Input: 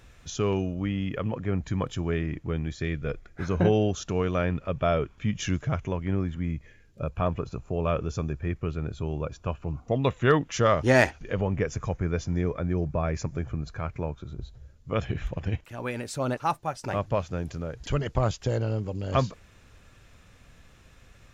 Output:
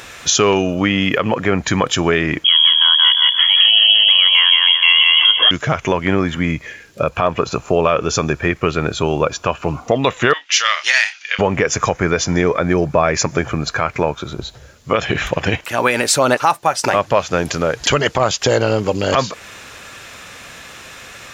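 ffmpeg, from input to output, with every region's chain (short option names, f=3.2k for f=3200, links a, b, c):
-filter_complex "[0:a]asettb=1/sr,asplit=3[a][b][c];[a]atrim=end=2.444[d];[b]atrim=start=2.44:end=5.51,asetpts=PTS-STARTPTS,afade=t=in:d=0.004:c=qsin,afade=t=out:st=3.066:d=0.004:c=qsin,aecho=1:1:173|346|519|692|865:0.631|0.265|0.111|0.0467|0.0196,atrim=end_sample=135387,lowpass=f=2.9k:t=q:w=0.5098,lowpass=f=2.9k:t=q:w=0.6013,lowpass=f=2.9k:t=q:w=0.9,lowpass=f=2.9k:t=q:w=2.563,afreqshift=-3400[e];[c]atrim=start=5.506[f];[d][e]acrossfade=d=0.004:c1=hsin:c2=qsin[g];[g][f]acrossfade=d=0.004:c1=qsin:c2=hsin,asettb=1/sr,asplit=3[h][i][j];[h]atrim=end=10.334[k];[i]atrim=start=10.33:end=11.39,asetpts=PTS-STARTPTS,afade=t=in:d=0.004:c=qsin,afade=t=out:st=1.056:d=0.004:c=qsin,asuperpass=centerf=3500:order=4:qfactor=0.88,asplit=2[l][m];[m]adelay=29,volume=-11dB[n];[l][n]amix=inputs=2:normalize=0,atrim=end_sample=46746[o];[j]atrim=start=11.386[p];[k][o]acrossfade=d=0.004:c1=hsin:c2=qsin[q];[q][p]acrossfade=d=0.004:c1=qsin:c2=hsin,highpass=f=790:p=1,acompressor=threshold=-36dB:ratio=2.5,alimiter=level_in=26dB:limit=-1dB:release=50:level=0:latency=1,volume=-1dB"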